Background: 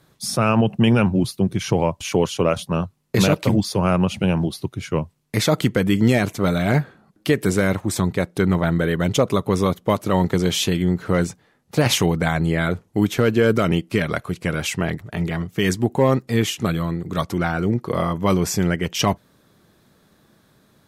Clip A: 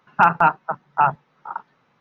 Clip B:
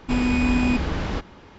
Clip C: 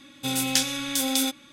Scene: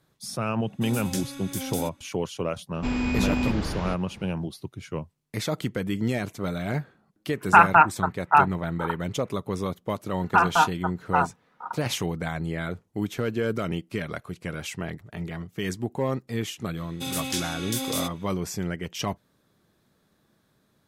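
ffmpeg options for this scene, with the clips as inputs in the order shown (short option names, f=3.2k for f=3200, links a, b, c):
-filter_complex "[3:a]asplit=2[a][b];[1:a]asplit=2[c][d];[0:a]volume=-10dB[e];[a]equalizer=f=3.2k:t=o:w=2:g=-9.5[f];[c]lowpass=f=2.3k:t=q:w=3.1[g];[d]aecho=1:1:4.1:0.54[h];[b]alimiter=limit=-11.5dB:level=0:latency=1:release=39[i];[f]atrim=end=1.52,asetpts=PTS-STARTPTS,volume=-6.5dB,afade=t=in:d=0.05,afade=t=out:st=1.47:d=0.05,adelay=580[j];[2:a]atrim=end=1.58,asetpts=PTS-STARTPTS,volume=-5dB,afade=t=in:d=0.004:c=hsin,afade=t=out:st=1.576:d=0.004:c=hsin,adelay=2740[k];[g]atrim=end=2,asetpts=PTS-STARTPTS,volume=-2dB,afade=t=in:d=0.004:c=hsin,afade=t=out:st=1.996:d=0.004:c=hsin,adelay=7340[l];[h]atrim=end=2,asetpts=PTS-STARTPTS,volume=-5dB,afade=t=in:d=0.004:c=hsin,afade=t=out:st=1.996:d=0.004:c=hsin,adelay=10150[m];[i]atrim=end=1.52,asetpts=PTS-STARTPTS,volume=-4.5dB,afade=t=in:d=0.004:c=hsin,afade=t=out:st=1.516:d=0.004:c=hsin,adelay=16770[n];[e][j][k][l][m][n]amix=inputs=6:normalize=0"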